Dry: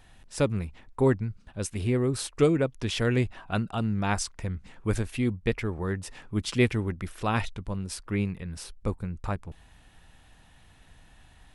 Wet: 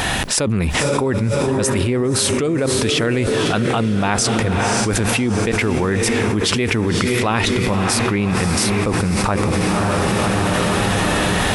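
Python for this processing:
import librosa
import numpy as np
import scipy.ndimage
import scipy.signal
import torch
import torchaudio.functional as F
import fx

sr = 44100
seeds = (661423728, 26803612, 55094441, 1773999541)

p1 = fx.highpass(x, sr, hz=190.0, slope=6)
p2 = p1 + fx.echo_diffused(p1, sr, ms=552, feedback_pct=57, wet_db=-11.5, dry=0)
y = fx.env_flatten(p2, sr, amount_pct=100)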